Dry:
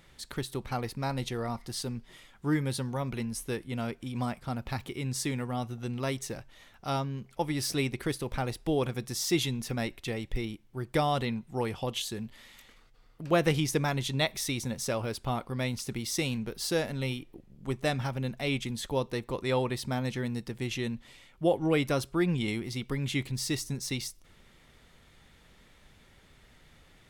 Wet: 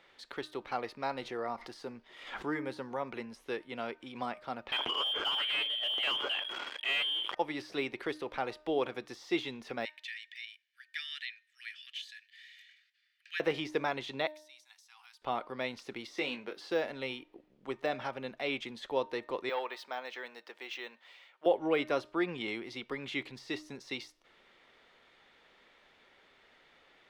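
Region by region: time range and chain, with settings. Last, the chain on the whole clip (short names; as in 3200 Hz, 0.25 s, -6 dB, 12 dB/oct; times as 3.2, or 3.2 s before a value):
1.22–3.31 dynamic EQ 3400 Hz, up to -7 dB, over -54 dBFS, Q 1.7 + backwards sustainer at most 78 dB/s
4.72–7.35 inverted band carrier 3300 Hz + sample leveller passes 5 + sustainer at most 58 dB/s
9.85–13.4 steep high-pass 1600 Hz 72 dB/oct + comb 1.7 ms, depth 39%
14.27–15.22 differentiator + compressor 16:1, threshold -47 dBFS + brick-wall FIR high-pass 720 Hz
16.14–16.7 HPF 170 Hz + dynamic EQ 2200 Hz, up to +4 dB, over -45 dBFS, Q 0.75 + doubler 20 ms -8 dB
19.49–21.46 HPF 630 Hz + careless resampling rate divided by 2×, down none, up hold + core saturation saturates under 810 Hz
whole clip: de-esser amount 90%; three-band isolator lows -23 dB, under 310 Hz, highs -20 dB, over 4600 Hz; de-hum 305.9 Hz, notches 6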